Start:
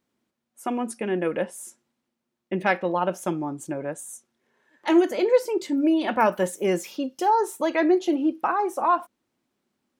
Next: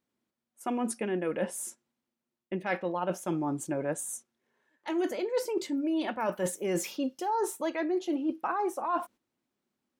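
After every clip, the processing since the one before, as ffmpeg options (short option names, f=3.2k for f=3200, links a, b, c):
-af "agate=range=-9dB:threshold=-46dB:ratio=16:detection=peak,areverse,acompressor=threshold=-29dB:ratio=10,areverse,volume=2dB"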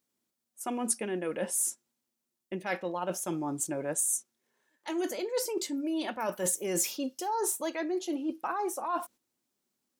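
-af "bass=f=250:g=-2,treble=f=4k:g=11,volume=-2dB"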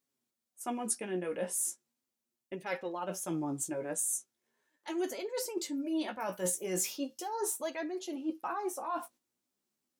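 -af "flanger=delay=7.2:depth=9.6:regen=23:speed=0.38:shape=sinusoidal"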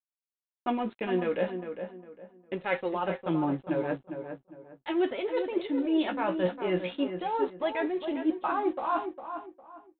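-filter_complex "[0:a]aresample=8000,aeval=exprs='sgn(val(0))*max(abs(val(0))-0.00141,0)':c=same,aresample=44100,asplit=2[a][b];[b]adelay=405,lowpass=f=1.9k:p=1,volume=-8dB,asplit=2[c][d];[d]adelay=405,lowpass=f=1.9k:p=1,volume=0.3,asplit=2[e][f];[f]adelay=405,lowpass=f=1.9k:p=1,volume=0.3,asplit=2[g][h];[h]adelay=405,lowpass=f=1.9k:p=1,volume=0.3[i];[a][c][e][g][i]amix=inputs=5:normalize=0,volume=7.5dB"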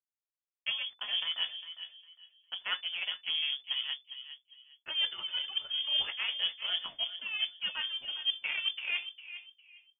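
-af "aeval=exprs='0.188*(cos(1*acos(clip(val(0)/0.188,-1,1)))-cos(1*PI/2))+0.0168*(cos(4*acos(clip(val(0)/0.188,-1,1)))-cos(4*PI/2))+0.00335*(cos(6*acos(clip(val(0)/0.188,-1,1)))-cos(6*PI/2))+0.00944*(cos(7*acos(clip(val(0)/0.188,-1,1)))-cos(7*PI/2))':c=same,lowpass=f=3k:t=q:w=0.5098,lowpass=f=3k:t=q:w=0.6013,lowpass=f=3k:t=q:w=0.9,lowpass=f=3k:t=q:w=2.563,afreqshift=-3500,volume=-5dB"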